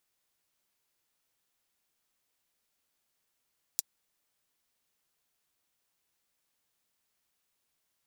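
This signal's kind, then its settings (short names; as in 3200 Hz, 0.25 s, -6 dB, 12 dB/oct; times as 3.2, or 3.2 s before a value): closed hi-hat, high-pass 5500 Hz, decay 0.03 s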